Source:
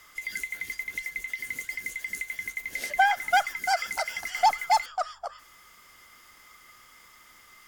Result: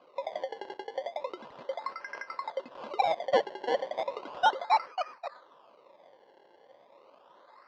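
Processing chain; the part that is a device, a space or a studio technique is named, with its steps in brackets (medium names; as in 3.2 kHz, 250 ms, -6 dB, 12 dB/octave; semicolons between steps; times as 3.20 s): circuit-bent sampling toy (decimation with a swept rate 24×, swing 100% 0.35 Hz; cabinet simulation 420–4400 Hz, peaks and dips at 550 Hz +10 dB, 1 kHz +9 dB, 2.2 kHz -4 dB); trim -6 dB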